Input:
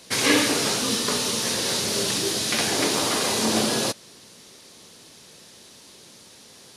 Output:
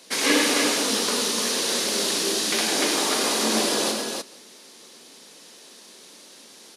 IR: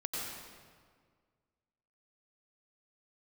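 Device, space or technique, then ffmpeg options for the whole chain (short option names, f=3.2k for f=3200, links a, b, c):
ducked delay: -filter_complex "[0:a]highpass=f=210:w=0.5412,highpass=f=210:w=1.3066,aecho=1:1:99|298:0.501|0.631,asplit=3[a][b][c];[b]adelay=174,volume=-9dB[d];[c]apad=whole_len=319349[e];[d][e]sidechaincompress=threshold=-35dB:ratio=8:attack=16:release=1340[f];[a][f]amix=inputs=2:normalize=0,volume=-1.5dB"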